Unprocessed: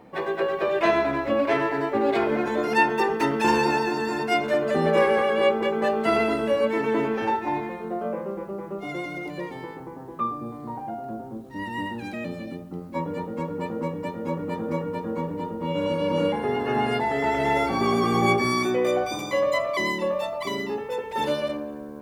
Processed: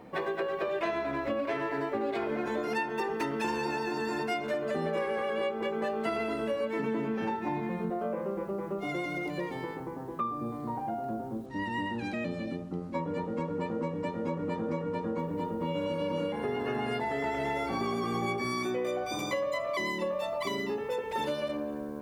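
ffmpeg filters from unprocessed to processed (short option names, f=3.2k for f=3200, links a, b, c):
-filter_complex "[0:a]asettb=1/sr,asplit=3[a][b][c];[a]atrim=end=6.794[d];[b]atrim=start=6.79:end=7.9,asetpts=PTS-STARTPTS,afade=t=in:d=0.004:c=qsin,afade=t=out:st=1.106:d=0.004:c=qsin,equalizer=f=180:t=o:w=0.77:g=12.5[e];[c]atrim=start=7.896[f];[d][e]acrossfade=d=0.004:c1=hsin:c2=qsin[g];[g][f]acrossfade=d=0.004:c1=qsin:c2=hsin,asettb=1/sr,asplit=3[h][i][j];[h]atrim=end=11.464[k];[i]atrim=start=11.46:end=15.19,asetpts=PTS-STARTPTS,afade=t=in:d=0.004:c=qsin,afade=t=out:st=3.726:d=0.004:c=qsin,lowpass=7.7k[l];[j]atrim=start=15.186[m];[k][l]acrossfade=d=0.004:c1=hsin:c2=qsin[n];[n][m]acrossfade=d=0.004:c1=qsin:c2=hsin,bandreject=f=850:w=21,acompressor=threshold=-29dB:ratio=6"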